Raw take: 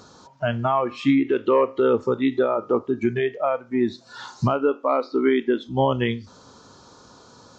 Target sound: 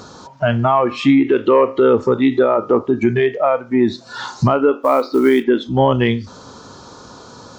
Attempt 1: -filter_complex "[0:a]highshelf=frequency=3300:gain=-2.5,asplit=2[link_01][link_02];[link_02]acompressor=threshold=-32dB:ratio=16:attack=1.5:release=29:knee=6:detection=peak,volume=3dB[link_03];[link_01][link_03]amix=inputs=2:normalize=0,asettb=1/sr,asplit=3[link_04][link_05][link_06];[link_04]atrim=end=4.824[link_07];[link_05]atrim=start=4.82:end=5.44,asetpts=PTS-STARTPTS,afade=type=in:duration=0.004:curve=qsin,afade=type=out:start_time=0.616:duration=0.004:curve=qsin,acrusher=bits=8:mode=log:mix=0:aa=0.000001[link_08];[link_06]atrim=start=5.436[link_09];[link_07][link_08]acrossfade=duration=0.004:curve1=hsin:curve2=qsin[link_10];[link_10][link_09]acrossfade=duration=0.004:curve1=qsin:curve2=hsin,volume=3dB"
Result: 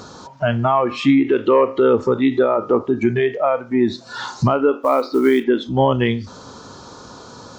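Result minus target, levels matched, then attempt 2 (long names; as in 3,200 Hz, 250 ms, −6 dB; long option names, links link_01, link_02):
downward compressor: peak gain reduction +7.5 dB
-filter_complex "[0:a]highshelf=frequency=3300:gain=-2.5,asplit=2[link_01][link_02];[link_02]acompressor=threshold=-24dB:ratio=16:attack=1.5:release=29:knee=6:detection=peak,volume=3dB[link_03];[link_01][link_03]amix=inputs=2:normalize=0,asettb=1/sr,asplit=3[link_04][link_05][link_06];[link_04]atrim=end=4.824[link_07];[link_05]atrim=start=4.82:end=5.44,asetpts=PTS-STARTPTS,afade=type=in:duration=0.004:curve=qsin,afade=type=out:start_time=0.616:duration=0.004:curve=qsin,acrusher=bits=8:mode=log:mix=0:aa=0.000001[link_08];[link_06]atrim=start=5.436[link_09];[link_07][link_08]acrossfade=duration=0.004:curve1=hsin:curve2=qsin[link_10];[link_10][link_09]acrossfade=duration=0.004:curve1=qsin:curve2=hsin,volume=3dB"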